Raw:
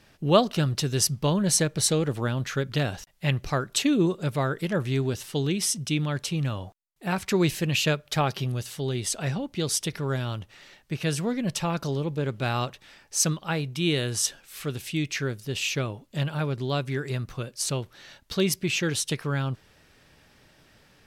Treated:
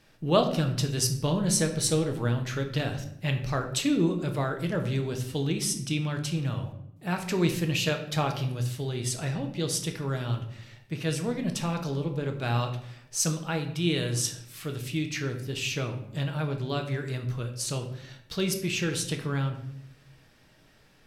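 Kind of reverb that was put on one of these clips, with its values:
rectangular room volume 180 cubic metres, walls mixed, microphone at 0.57 metres
level −4 dB

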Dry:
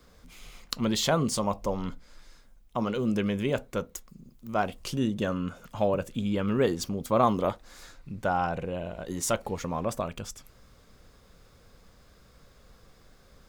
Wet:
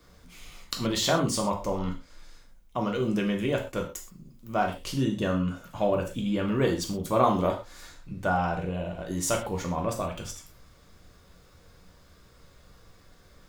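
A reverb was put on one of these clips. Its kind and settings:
reverb whose tail is shaped and stops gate 150 ms falling, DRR 1 dB
level −1 dB

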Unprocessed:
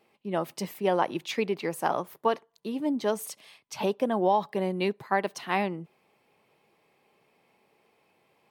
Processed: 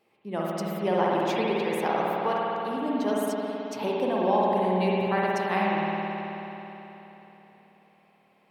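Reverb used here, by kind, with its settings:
spring reverb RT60 3.6 s, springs 54 ms, chirp 50 ms, DRR −5 dB
level −3.5 dB

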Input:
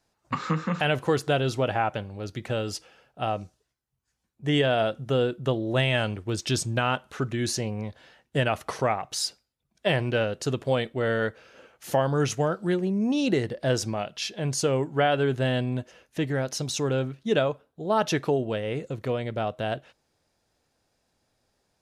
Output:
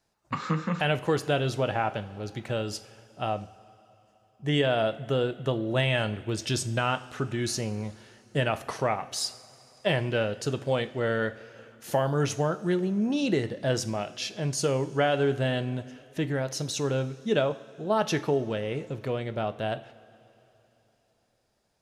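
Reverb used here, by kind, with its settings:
coupled-rooms reverb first 0.49 s, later 3.5 s, from −15 dB, DRR 11 dB
level −2 dB

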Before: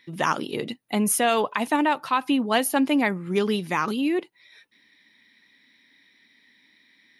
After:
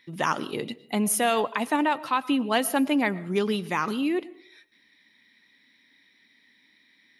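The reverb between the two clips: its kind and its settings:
comb and all-pass reverb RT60 0.57 s, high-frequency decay 0.4×, pre-delay 75 ms, DRR 19 dB
level −2 dB

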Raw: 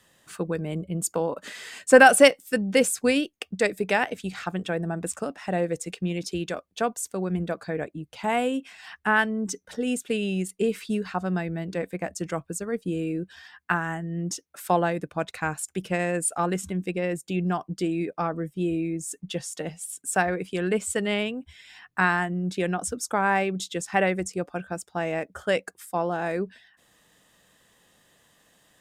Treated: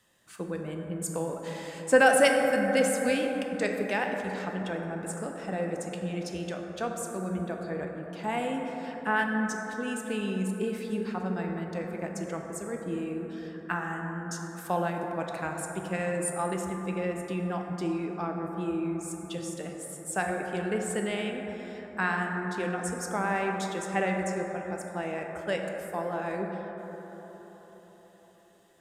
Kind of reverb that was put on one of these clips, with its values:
dense smooth reverb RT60 4.6 s, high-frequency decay 0.25×, DRR 1.5 dB
level −7 dB

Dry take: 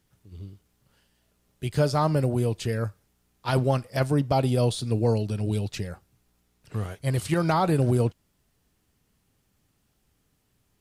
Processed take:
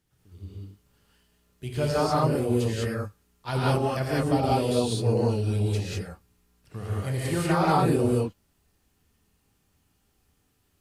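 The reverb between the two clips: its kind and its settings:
reverb whose tail is shaped and stops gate 220 ms rising, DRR −6.5 dB
level −6 dB

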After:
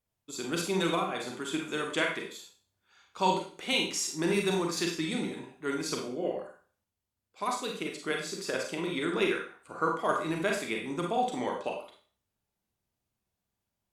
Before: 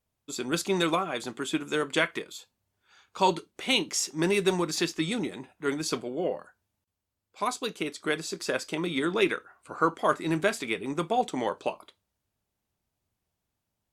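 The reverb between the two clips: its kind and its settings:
four-comb reverb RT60 0.43 s, combs from 32 ms, DRR 1 dB
level −5 dB

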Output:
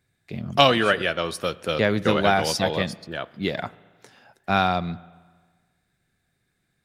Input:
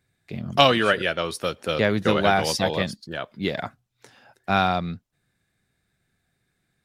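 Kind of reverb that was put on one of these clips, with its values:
spring reverb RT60 1.5 s, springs 35/44 ms, chirp 60 ms, DRR 19.5 dB

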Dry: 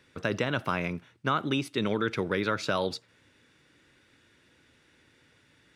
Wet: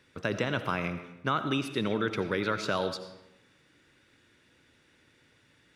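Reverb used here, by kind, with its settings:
comb and all-pass reverb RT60 0.93 s, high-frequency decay 0.75×, pre-delay 45 ms, DRR 10 dB
level −1.5 dB

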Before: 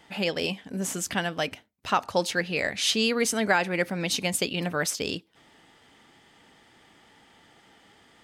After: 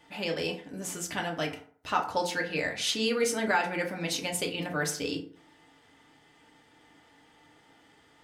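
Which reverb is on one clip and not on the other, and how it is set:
feedback delay network reverb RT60 0.52 s, low-frequency decay 0.95×, high-frequency decay 0.5×, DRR 0.5 dB
level −6 dB

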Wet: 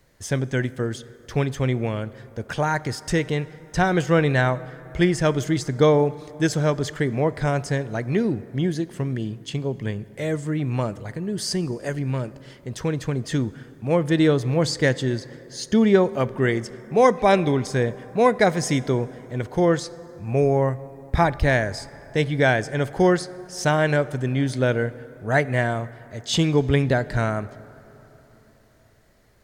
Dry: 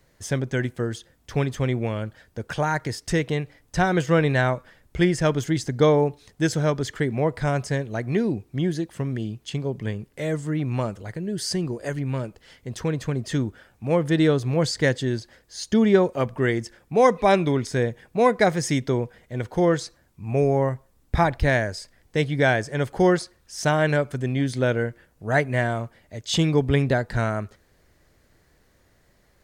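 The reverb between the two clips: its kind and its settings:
dense smooth reverb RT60 3.9 s, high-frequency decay 0.45×, DRR 17.5 dB
level +1 dB

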